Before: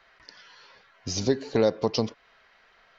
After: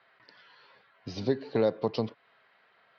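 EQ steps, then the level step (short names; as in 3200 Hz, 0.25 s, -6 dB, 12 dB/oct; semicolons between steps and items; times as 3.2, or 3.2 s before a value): Chebyshev band-pass 110–4400 Hz, order 3; air absorption 130 m; -3.0 dB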